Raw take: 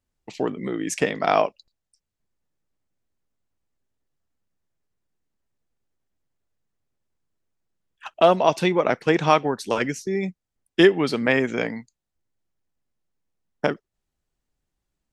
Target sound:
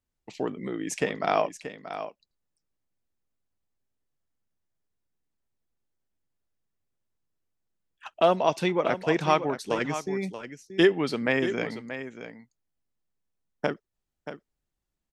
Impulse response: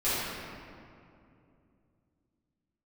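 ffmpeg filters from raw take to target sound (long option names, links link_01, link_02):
-af "aecho=1:1:631:0.282,volume=-5dB"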